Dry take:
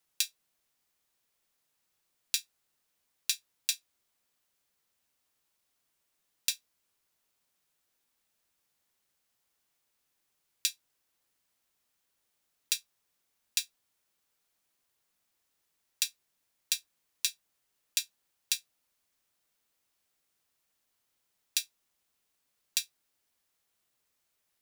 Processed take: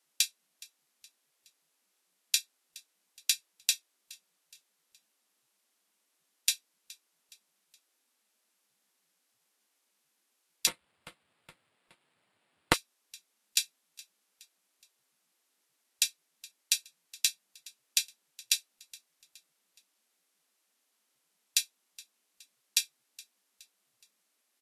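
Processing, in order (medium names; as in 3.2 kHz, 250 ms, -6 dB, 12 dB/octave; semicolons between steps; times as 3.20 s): feedback delay 419 ms, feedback 46%, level -22 dB; 10.67–12.74 s: sample-rate reducer 6.1 kHz, jitter 0%; trim +3 dB; Vorbis 48 kbps 32 kHz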